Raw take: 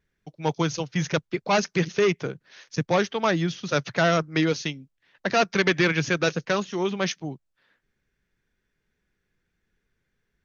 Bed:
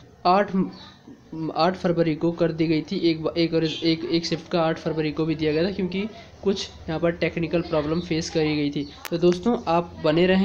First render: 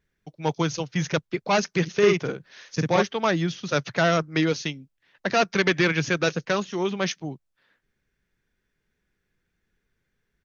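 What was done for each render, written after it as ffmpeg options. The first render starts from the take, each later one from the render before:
-filter_complex "[0:a]asplit=3[s0][s1][s2];[s0]afade=t=out:st=2.01:d=0.02[s3];[s1]asplit=2[s4][s5];[s5]adelay=49,volume=0.794[s6];[s4][s6]amix=inputs=2:normalize=0,afade=t=in:st=2.01:d=0.02,afade=t=out:st=3.01:d=0.02[s7];[s2]afade=t=in:st=3.01:d=0.02[s8];[s3][s7][s8]amix=inputs=3:normalize=0"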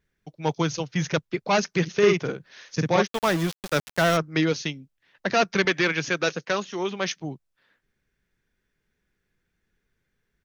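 -filter_complex "[0:a]asplit=3[s0][s1][s2];[s0]afade=t=out:st=3.06:d=0.02[s3];[s1]aeval=exprs='val(0)*gte(abs(val(0)),0.0447)':c=same,afade=t=in:st=3.06:d=0.02,afade=t=out:st=4.16:d=0.02[s4];[s2]afade=t=in:st=4.16:d=0.02[s5];[s3][s4][s5]amix=inputs=3:normalize=0,asettb=1/sr,asplit=3[s6][s7][s8];[s6]atrim=end=5.654[s9];[s7]atrim=start=5.65:end=7.11,asetpts=PTS-STARTPTS,afade=t=in:d=0.004:c=qsin,afade=t=out:st=1.456:d=0.004:c=qsin,highpass=f=300:p=1[s10];[s8]atrim=start=7.106[s11];[s9][s10]acrossfade=d=0.004:c1=hsin:c2=qsin[s12];[s12][s11]acrossfade=d=0.004:c1=qsin:c2=hsin"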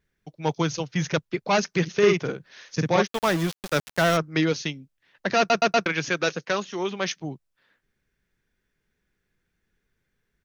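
-filter_complex "[0:a]asplit=5[s0][s1][s2][s3][s4];[s0]atrim=end=5.502[s5];[s1]atrim=start=5.378:end=5.502[s6];[s2]atrim=start=5.378:end=5.502[s7];[s3]atrim=start=5.378:end=5.502[s8];[s4]atrim=start=5.858[s9];[s5][s6]acrossfade=d=0.004:c1=hsin:c2=hsin[s10];[s10][s7]acrossfade=d=0.004:c1=hsin:c2=hsin[s11];[s11][s8]acrossfade=d=0.004:c1=hsin:c2=hsin[s12];[s12][s9]acrossfade=d=0.004:c1=hsin:c2=hsin"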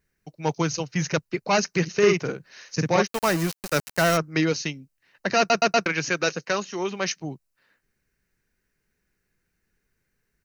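-af "highshelf=f=5100:g=7,bandreject=f=3400:w=5.4"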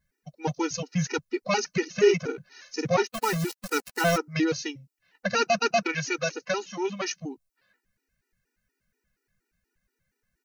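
-af "afftfilt=real='re*gt(sin(2*PI*4.2*pts/sr)*(1-2*mod(floor(b*sr/1024/250),2)),0)':imag='im*gt(sin(2*PI*4.2*pts/sr)*(1-2*mod(floor(b*sr/1024/250),2)),0)':win_size=1024:overlap=0.75"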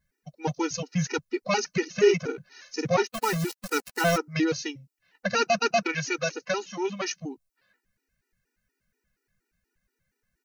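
-af anull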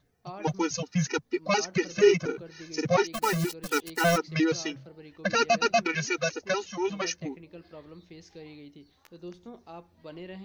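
-filter_complex "[1:a]volume=0.0668[s0];[0:a][s0]amix=inputs=2:normalize=0"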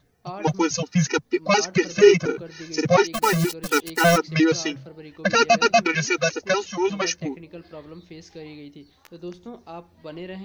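-af "volume=2.11"

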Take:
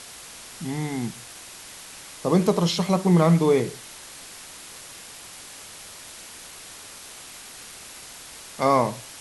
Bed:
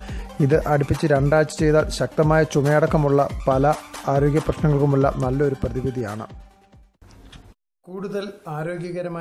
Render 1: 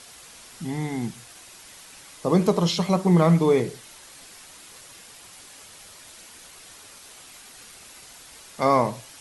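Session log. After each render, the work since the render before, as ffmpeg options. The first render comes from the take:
-af "afftdn=nr=6:nf=-43"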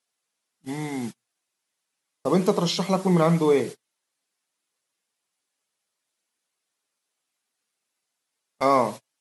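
-af "highpass=180,agate=range=0.0178:threshold=0.0251:ratio=16:detection=peak"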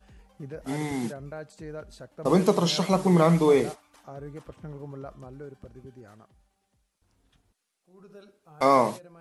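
-filter_complex "[1:a]volume=0.0794[s0];[0:a][s0]amix=inputs=2:normalize=0"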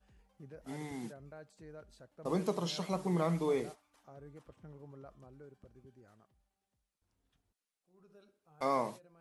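-af "volume=0.237"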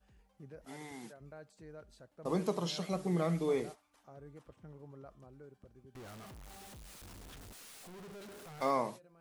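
-filter_complex "[0:a]asettb=1/sr,asplit=3[s0][s1][s2];[s0]atrim=end=0.654[s3];[s1]atrim=start=0.65:end=1.21,asetpts=PTS-STARTPTS,afade=t=in:d=0.004:c=qsin,afade=t=out:st=0.556:d=0.004:c=qsin,lowshelf=f=350:g=-10.5[s4];[s2]atrim=start=1.206[s5];[s3][s4]acrossfade=d=0.004:c1=hsin:c2=qsin[s6];[s6][s5]acrossfade=d=0.004:c1=qsin:c2=hsin,asettb=1/sr,asplit=3[s7][s8][s9];[s7]atrim=end=2.794[s10];[s8]atrim=start=2.79:end=3.49,asetpts=PTS-STARTPTS,afade=t=in:d=0.004:c=qsin,afade=t=out:st=0.696:d=0.004:c=qsin,equalizer=f=960:w=5.7:g=-12[s11];[s9]atrim=start=3.486[s12];[s10][s11]acrossfade=d=0.004:c1=hsin:c2=qsin[s13];[s13][s12]acrossfade=d=0.004:c1=qsin:c2=hsin,asettb=1/sr,asplit=3[s14][s15][s16];[s14]atrim=end=5.954[s17];[s15]atrim=start=5.95:end=8.71,asetpts=PTS-STARTPTS,afade=t=in:d=0.004:c=qsin,afade=t=out:st=2.756:d=0.004:c=qsin,aeval=exprs='val(0)+0.5*0.00562*sgn(val(0))':c=same[s18];[s16]atrim=start=8.706[s19];[s17][s18]acrossfade=d=0.004:c1=hsin:c2=qsin[s20];[s20][s19]acrossfade=d=0.004:c1=qsin:c2=hsin"

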